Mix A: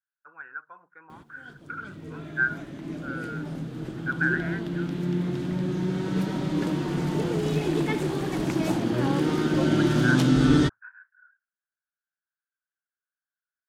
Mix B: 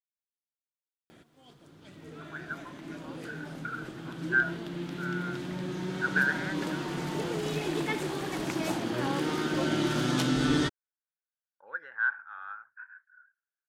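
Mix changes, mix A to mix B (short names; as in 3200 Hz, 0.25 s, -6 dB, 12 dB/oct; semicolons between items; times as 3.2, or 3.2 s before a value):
speech: entry +1.95 s; master: add low shelf 400 Hz -10.5 dB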